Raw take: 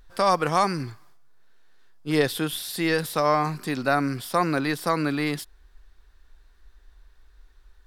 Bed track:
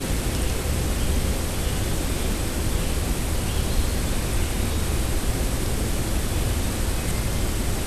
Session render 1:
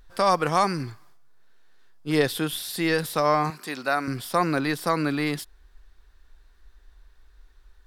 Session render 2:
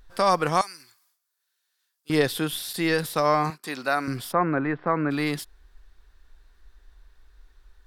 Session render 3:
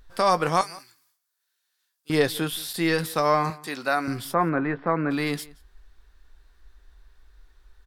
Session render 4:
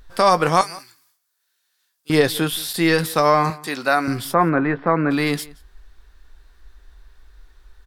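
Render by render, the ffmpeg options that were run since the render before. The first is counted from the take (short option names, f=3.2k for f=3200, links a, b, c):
-filter_complex "[0:a]asettb=1/sr,asplit=3[a][b][c];[a]atrim=end=3.504[d];[b]atrim=start=3.5:end=4.08,asetpts=PTS-STARTPTS,afade=t=in:d=0.004:c=qsin,afade=t=out:st=0.576:d=0.004:c=qsin,highpass=f=610:p=1[e];[c]atrim=start=4.076[f];[d][e]acrossfade=d=0.004:c1=hsin:c2=qsin[g];[g][f]acrossfade=d=0.004:c1=qsin:c2=hsin"
-filter_complex "[0:a]asettb=1/sr,asplit=3[a][b][c];[a]atrim=end=0.614[d];[b]atrim=start=0.61:end=2.1,asetpts=PTS-STARTPTS,afade=t=in:d=0.004:c=qsin,afade=t=out:st=1.486:d=0.004:c=qsin,aderivative[e];[c]atrim=start=2.096[f];[d][e]acrossfade=d=0.004:c1=hsin:c2=qsin[g];[g][f]acrossfade=d=0.004:c1=qsin:c2=hsin,asettb=1/sr,asplit=3[h][i][j];[h]atrim=end=2.734[k];[i]atrim=start=2.73:end=3.64,asetpts=PTS-STARTPTS,afade=t=in:d=0.004:c=qsin,afade=t=out:st=0.906:d=0.004:c=qsin,agate=range=-33dB:threshold=-35dB:ratio=3:release=100:detection=peak[l];[j]atrim=start=3.636[m];[k][l]acrossfade=d=0.004:c1=hsin:c2=qsin[n];[n][m]acrossfade=d=0.004:c1=qsin:c2=hsin,asplit=3[o][p][q];[o]afade=t=out:st=4.31:d=0.02[r];[p]lowpass=f=2k:w=0.5412,lowpass=f=2k:w=1.3066,afade=t=in:st=4.31:d=0.02,afade=t=out:st=5.1:d=0.02[s];[q]afade=t=in:st=5.1:d=0.02[t];[r][s][t]amix=inputs=3:normalize=0"
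-filter_complex "[0:a]asplit=2[a][b];[b]adelay=18,volume=-13dB[c];[a][c]amix=inputs=2:normalize=0,asplit=2[d][e];[e]adelay=174.9,volume=-22dB,highshelf=f=4k:g=-3.94[f];[d][f]amix=inputs=2:normalize=0"
-af "volume=6dB,alimiter=limit=-3dB:level=0:latency=1"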